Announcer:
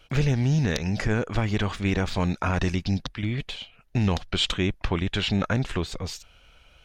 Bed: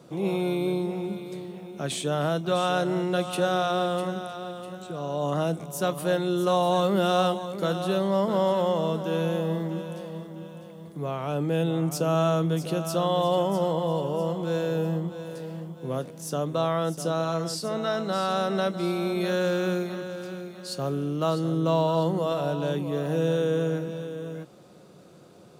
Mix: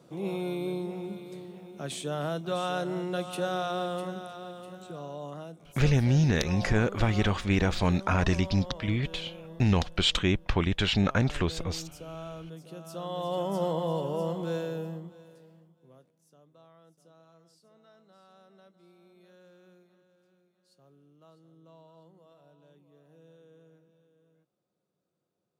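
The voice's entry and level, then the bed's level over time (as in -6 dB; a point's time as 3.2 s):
5.65 s, -0.5 dB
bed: 4.94 s -6 dB
5.53 s -18 dB
12.63 s -18 dB
13.63 s -3.5 dB
14.46 s -3.5 dB
16.29 s -32 dB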